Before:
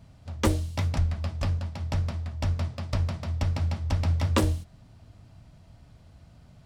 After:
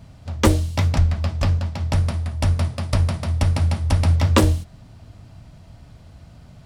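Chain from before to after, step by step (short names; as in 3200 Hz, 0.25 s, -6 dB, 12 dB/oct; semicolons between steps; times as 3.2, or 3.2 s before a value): 1.93–4.16 bell 9700 Hz +14.5 dB 0.31 oct; gain +8 dB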